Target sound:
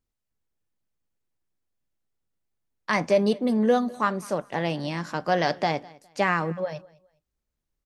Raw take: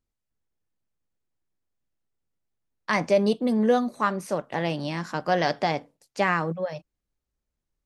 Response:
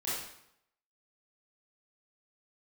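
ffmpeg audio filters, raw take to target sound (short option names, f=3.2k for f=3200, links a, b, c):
-af "aecho=1:1:206|412:0.0708|0.0184"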